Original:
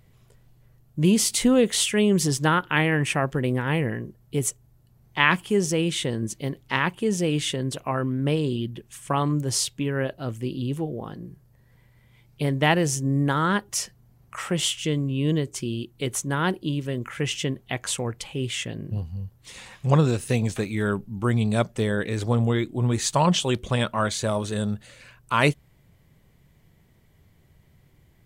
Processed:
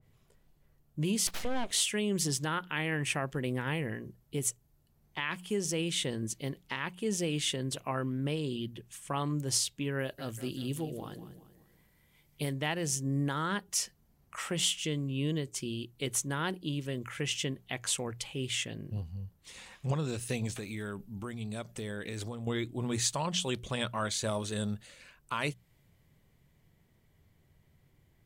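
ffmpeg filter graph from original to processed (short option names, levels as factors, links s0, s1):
-filter_complex "[0:a]asettb=1/sr,asplit=3[s0][s1][s2];[s0]atrim=end=1.274[s3];[s1]atrim=start=1.27:end=1.71,asetpts=PTS-STARTPTS,afade=t=in:d=0.004:c=qsin,afade=t=out:st=0.436:d=0.004:c=qsin,aeval=exprs='abs(val(0))':c=same,aemphasis=mode=reproduction:type=50kf,acompressor=mode=upward:threshold=0.0794:ratio=2.5:attack=3.2:release=140:knee=2.83:detection=peak[s4];[s2]atrim=start=1.706[s5];[s3][s4]acrossfade=d=0.004:c1=hsin:c2=qsin[s6];[s6][s5]acrossfade=d=0.004:c1=qsin:c2=hsin,asettb=1/sr,asplit=3[s7][s8][s9];[s7]atrim=end=9.994[s10];[s8]atrim=start=9.99:end=12.53,asetpts=PTS-STARTPTS,afade=t=in:d=0.004:c=qsin,afade=t=out:st=2.536:d=0.004:c=qsin,aemphasis=mode=production:type=cd,aecho=1:1:193|386|579|772:0.224|0.0985|0.0433|0.0191,atrim=end_sample=112014[s11];[s9]atrim=start=12.526[s12];[s10][s11]acrossfade=d=0.004:c1=hsin:c2=qsin[s13];[s13][s12]acrossfade=d=0.004:c1=qsin:c2=hsin,asettb=1/sr,asplit=3[s14][s15][s16];[s14]atrim=end=20.584[s17];[s15]atrim=start=20.58:end=22.47,asetpts=PTS-STARTPTS,afade=t=in:d=0.004:c=qsin,afade=t=out:st=1.886:d=0.004:c=qsin,acompressor=threshold=0.0398:ratio=4:attack=3.2:release=140:knee=1:detection=peak,highshelf=f=11000:g=5.5[s18];[s16]atrim=start=22.466[s19];[s17][s18]acrossfade=d=0.004:c1=hsin:c2=qsin[s20];[s20][s19]acrossfade=d=0.004:c1=qsin:c2=hsin,bandreject=f=60:t=h:w=6,bandreject=f=120:t=h:w=6,bandreject=f=180:t=h:w=6,alimiter=limit=0.178:level=0:latency=1:release=313,adynamicequalizer=threshold=0.00708:dfrequency=2000:dqfactor=0.7:tfrequency=2000:tqfactor=0.7:attack=5:release=100:ratio=0.375:range=2.5:mode=boostabove:tftype=highshelf,volume=0.422"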